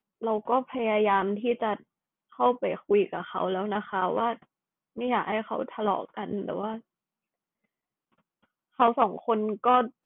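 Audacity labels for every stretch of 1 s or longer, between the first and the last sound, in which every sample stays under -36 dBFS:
6.780000	8.800000	silence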